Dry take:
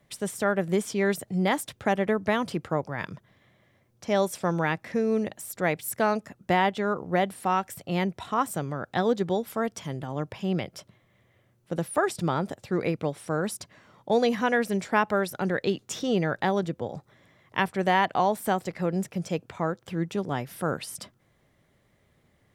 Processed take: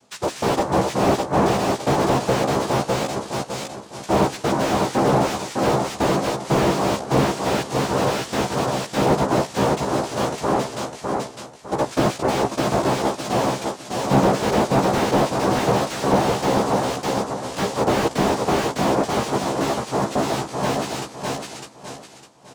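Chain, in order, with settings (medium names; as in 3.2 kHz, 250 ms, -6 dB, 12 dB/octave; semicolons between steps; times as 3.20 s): de-hum 128.7 Hz, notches 7; noise-vocoded speech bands 2; doubling 15 ms -3 dB; feedback delay 605 ms, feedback 33%, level -4 dB; slew-rate limiter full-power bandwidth 80 Hz; trim +5 dB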